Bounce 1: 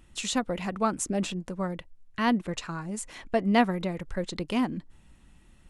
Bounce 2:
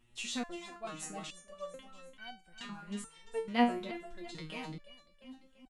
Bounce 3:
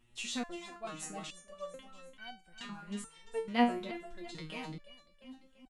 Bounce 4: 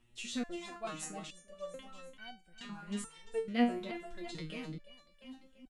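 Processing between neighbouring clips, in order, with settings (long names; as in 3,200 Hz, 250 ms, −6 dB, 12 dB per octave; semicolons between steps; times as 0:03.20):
parametric band 2,900 Hz +5.5 dB 1.2 octaves; on a send: repeating echo 343 ms, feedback 46%, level −9 dB; on the sum: step-sequenced resonator 2.3 Hz 120–760 Hz
no processing that can be heard
rotating-speaker cabinet horn 0.9 Hz; level +2.5 dB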